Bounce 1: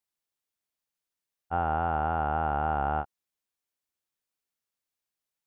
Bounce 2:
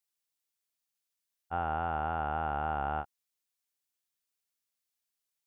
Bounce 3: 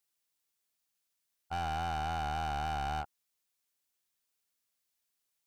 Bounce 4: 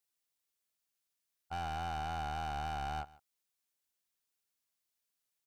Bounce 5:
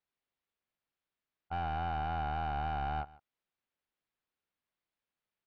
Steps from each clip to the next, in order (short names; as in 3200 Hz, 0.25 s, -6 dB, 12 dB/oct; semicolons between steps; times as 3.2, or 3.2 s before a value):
high shelf 2100 Hz +9 dB; gain -6 dB
hard clip -36 dBFS, distortion -5 dB; gain +3.5 dB
echo 0.148 s -21 dB; gain -3.5 dB
air absorption 370 m; gain +4.5 dB